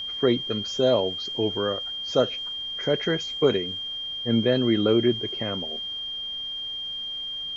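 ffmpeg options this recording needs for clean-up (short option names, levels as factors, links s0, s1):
-af "bandreject=f=3200:w=30,agate=range=0.0891:threshold=0.0562"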